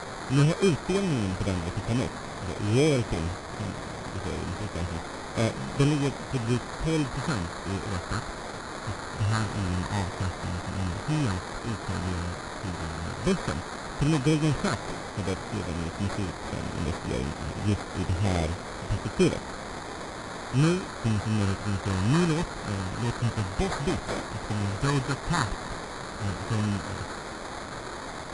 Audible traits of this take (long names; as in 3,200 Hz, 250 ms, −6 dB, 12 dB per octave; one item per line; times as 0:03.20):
a quantiser's noise floor 6 bits, dither triangular
phaser sweep stages 6, 0.072 Hz, lowest notch 530–1,200 Hz
aliases and images of a low sample rate 2,800 Hz, jitter 0%
AAC